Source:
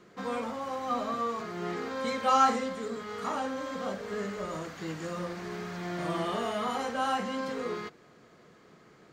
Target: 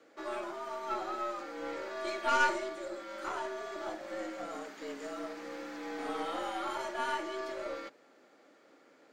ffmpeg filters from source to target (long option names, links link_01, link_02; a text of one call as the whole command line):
ffmpeg -i in.wav -af "afreqshift=120,aeval=exprs='0.251*(cos(1*acos(clip(val(0)/0.251,-1,1)))-cos(1*PI/2))+0.0316*(cos(4*acos(clip(val(0)/0.251,-1,1)))-cos(4*PI/2))':channel_layout=same,volume=-5dB" out.wav